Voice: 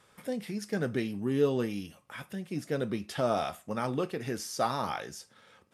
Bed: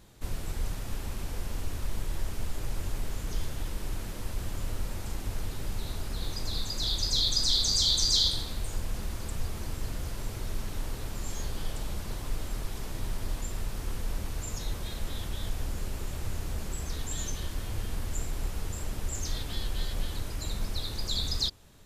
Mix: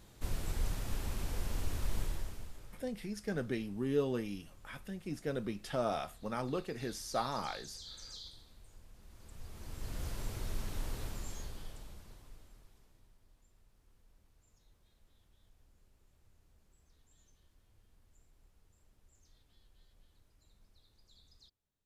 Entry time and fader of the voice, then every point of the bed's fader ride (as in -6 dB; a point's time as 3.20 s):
2.55 s, -5.5 dB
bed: 2.03 s -2.5 dB
2.86 s -24.5 dB
8.97 s -24.5 dB
10.03 s -4.5 dB
11.04 s -4.5 dB
13.20 s -34 dB